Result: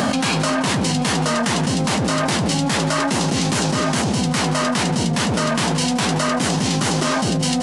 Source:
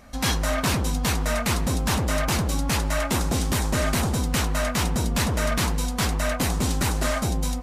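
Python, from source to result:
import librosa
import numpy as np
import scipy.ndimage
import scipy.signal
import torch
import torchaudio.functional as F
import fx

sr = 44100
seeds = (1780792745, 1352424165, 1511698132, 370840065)

p1 = scipy.signal.sosfilt(scipy.signal.butter(4, 130.0, 'highpass', fs=sr, output='sos'), x)
p2 = fx.formant_shift(p1, sr, semitones=-5)
p3 = p2 + fx.echo_single(p2, sr, ms=174, db=-21.0, dry=0)
p4 = fx.env_flatten(p3, sr, amount_pct=100)
y = p4 * 10.0 ** (2.0 / 20.0)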